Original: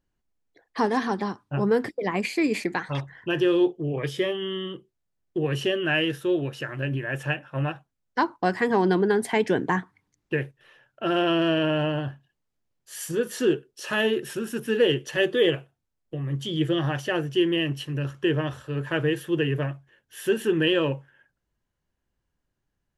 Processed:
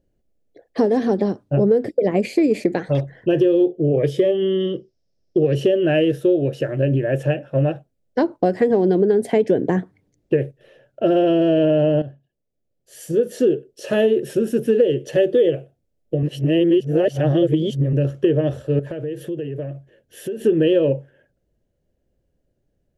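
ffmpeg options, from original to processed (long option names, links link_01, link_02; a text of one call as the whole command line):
ffmpeg -i in.wav -filter_complex "[0:a]asettb=1/sr,asplit=3[link_01][link_02][link_03];[link_01]atrim=end=4.604[link_04];[link_02]atrim=start=4.6:end=5.55,asetpts=PTS-STARTPTS,afade=type=in:duration=0.004:curve=qsin,afade=type=out:start_time=0.946:duration=0.004:curve=qsin,lowpass=frequency=5300:width_type=q:width=9.4[link_05];[link_03]atrim=start=5.546[link_06];[link_04][link_05]acrossfade=duration=0.004:curve1=hsin:curve2=qsin[link_07];[link_07][link_06]acrossfade=duration=0.004:curve1=qsin:curve2=hsin,asettb=1/sr,asplit=3[link_08][link_09][link_10];[link_08]atrim=end=18.794[link_11];[link_09]atrim=start=18.79:end=20.45,asetpts=PTS-STARTPTS,afade=type=in:duration=0.004:curve=qsin,afade=type=out:start_time=1.656:duration=0.004:curve=qsin,acompressor=threshold=-35dB:ratio=12:attack=3.2:release=140:knee=1:detection=peak[link_12];[link_10]atrim=start=20.446[link_13];[link_11][link_12]acrossfade=duration=0.004:curve1=hsin:curve2=qsin[link_14];[link_14][link_13]acrossfade=duration=0.004:curve1=qsin:curve2=hsin,asplit=4[link_15][link_16][link_17][link_18];[link_15]atrim=end=12.02,asetpts=PTS-STARTPTS,afade=type=out:start_time=12.016:duration=0.004:curve=hsin:silence=0.211349[link_19];[link_16]atrim=start=12.02:end=16.232,asetpts=PTS-STARTPTS,afade=type=in:duration=2.01:silence=0.211349[link_20];[link_17]atrim=start=16.228:end=17.932,asetpts=PTS-STARTPTS,areverse[link_21];[link_18]atrim=start=17.928[link_22];[link_19][link_20]concat=n=2:v=0:a=1[link_23];[link_23][link_21]acrossfade=duration=0.004:curve1=hsin:curve2=hsin[link_24];[link_24][link_22]acrossfade=duration=0.004:curve1=hsin:curve2=hsin,lowshelf=frequency=760:width_type=q:width=3:gain=9.5,acompressor=threshold=-13dB:ratio=6" out.wav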